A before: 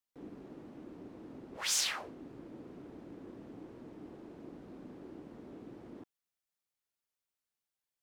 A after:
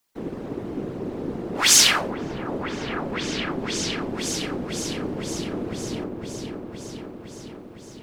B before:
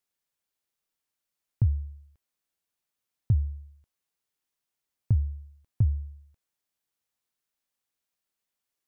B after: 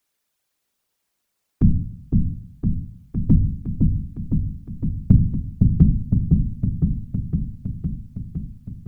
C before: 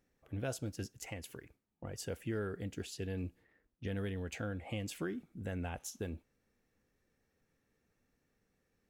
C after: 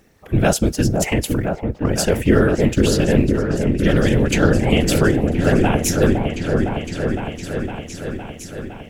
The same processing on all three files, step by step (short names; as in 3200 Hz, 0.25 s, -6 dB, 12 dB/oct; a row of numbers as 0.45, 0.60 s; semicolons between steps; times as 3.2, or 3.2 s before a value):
whisperiser; repeats that get brighter 0.51 s, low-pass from 750 Hz, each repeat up 1 oct, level -3 dB; normalise peaks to -1.5 dBFS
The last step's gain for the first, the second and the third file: +17.0, +10.0, +22.5 dB